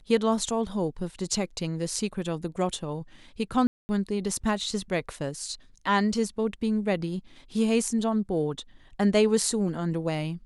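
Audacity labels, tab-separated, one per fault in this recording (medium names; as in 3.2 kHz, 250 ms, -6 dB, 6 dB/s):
3.670000	3.890000	dropout 220 ms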